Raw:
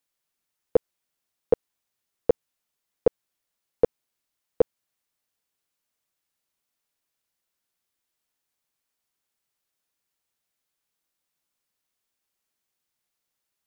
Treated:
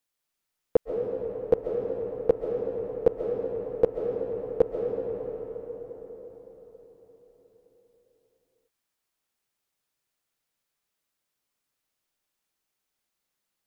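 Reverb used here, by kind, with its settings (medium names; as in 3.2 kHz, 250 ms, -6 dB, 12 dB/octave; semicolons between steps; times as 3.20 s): algorithmic reverb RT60 5 s, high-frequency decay 0.55×, pre-delay 100 ms, DRR 0.5 dB; trim -1.5 dB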